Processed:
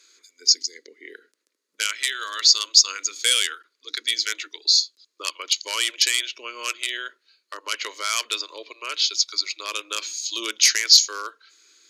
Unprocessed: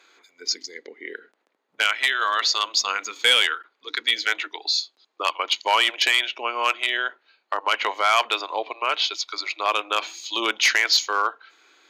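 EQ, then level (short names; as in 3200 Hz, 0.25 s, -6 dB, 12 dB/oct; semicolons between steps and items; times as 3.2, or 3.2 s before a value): tone controls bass -5 dB, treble +5 dB; band shelf 7200 Hz +10 dB; fixed phaser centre 320 Hz, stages 4; -4.5 dB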